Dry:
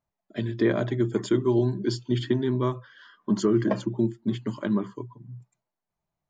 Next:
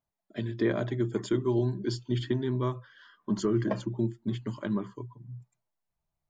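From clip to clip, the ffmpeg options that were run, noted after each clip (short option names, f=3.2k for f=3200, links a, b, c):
-af "asubboost=boost=2.5:cutoff=120,volume=-4dB"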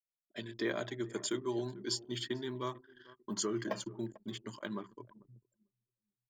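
-filter_complex "[0:a]aemphasis=mode=production:type=riaa,asplit=2[a][b];[b]adelay=445,lowpass=f=2.7k:p=1,volume=-18.5dB,asplit=2[c][d];[d]adelay=445,lowpass=f=2.7k:p=1,volume=0.43,asplit=2[e][f];[f]adelay=445,lowpass=f=2.7k:p=1,volume=0.43[g];[a][c][e][g]amix=inputs=4:normalize=0,anlmdn=0.0158,volume=-4dB"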